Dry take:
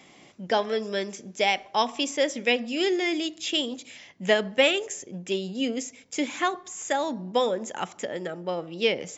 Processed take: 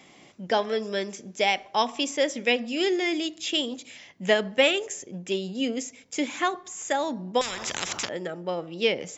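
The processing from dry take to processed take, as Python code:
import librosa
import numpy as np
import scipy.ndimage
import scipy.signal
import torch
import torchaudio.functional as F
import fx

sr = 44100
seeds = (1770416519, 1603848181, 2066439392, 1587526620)

y = fx.spectral_comp(x, sr, ratio=10.0, at=(7.41, 8.09))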